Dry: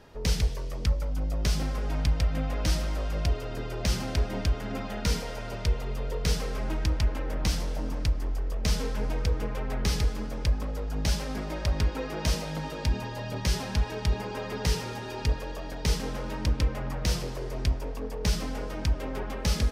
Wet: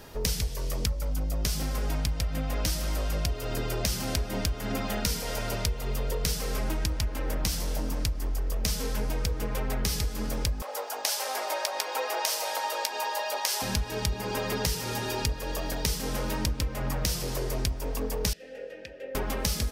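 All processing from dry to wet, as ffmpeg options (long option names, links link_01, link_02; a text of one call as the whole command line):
ffmpeg -i in.wav -filter_complex "[0:a]asettb=1/sr,asplit=3[link_01][link_02][link_03];[link_01]atrim=end=10.624[link_04];[link_02]atrim=start=10.62:end=13.62,asetpts=PTS-STARTPTS,afade=type=in:duration=0.004:curve=qsin,afade=type=out:start_time=2.996:duration=0.004:curve=qsin,highpass=frequency=510:width=0.5412,highpass=frequency=510:width=1.3066,equalizer=frequency=840:width=1.7:gain=6,asplit=2[link_05][link_06];[link_06]adelay=14,volume=-13.5dB[link_07];[link_05][link_07]amix=inputs=2:normalize=0,atrim=end_sample=132300[link_08];[link_03]atrim=start=13.616[link_09];[link_04][link_08]acrossfade=duration=0.004:curve1=hsin:curve2=qsin[link_10];[link_10][link_09]acrossfade=duration=0.004:curve1=qsin:curve2=hsin,asettb=1/sr,asplit=3[link_11][link_12][link_13];[link_11]atrim=end=18.334[link_14];[link_12]atrim=start=18.33:end=19.15,asetpts=PTS-STARTPTS,afade=type=in:duration=0.004:curve=qsin,afade=type=out:start_time=0.816:duration=0.004:curve=qsin,asplit=3[link_15][link_16][link_17];[link_15]bandpass=frequency=530:width_type=q:width=8,volume=0dB[link_18];[link_16]bandpass=frequency=1840:width_type=q:width=8,volume=-6dB[link_19];[link_17]bandpass=frequency=2480:width_type=q:width=8,volume=-9dB[link_20];[link_18][link_19][link_20]amix=inputs=3:normalize=0,bandreject=frequency=610:width=9.2[link_21];[link_13]atrim=start=19.146[link_22];[link_14][link_21]acrossfade=duration=0.004:curve1=hsin:curve2=qsin[link_23];[link_23][link_22]acrossfade=duration=0.004:curve1=qsin:curve2=hsin,aemphasis=mode=production:type=50fm,acompressor=threshold=-31dB:ratio=6,volume=5.5dB" out.wav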